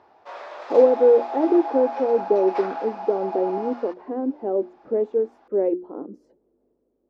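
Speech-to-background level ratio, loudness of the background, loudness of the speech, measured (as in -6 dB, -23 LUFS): 9.5 dB, -31.5 LUFS, -22.0 LUFS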